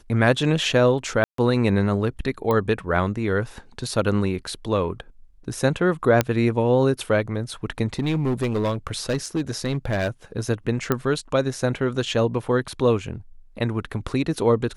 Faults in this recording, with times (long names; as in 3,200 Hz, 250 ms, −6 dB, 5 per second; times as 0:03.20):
0:01.24–0:01.38: drop-out 143 ms
0:02.51: click −12 dBFS
0:06.21: click −4 dBFS
0:07.99–0:10.09: clipping −18.5 dBFS
0:10.92: click −8 dBFS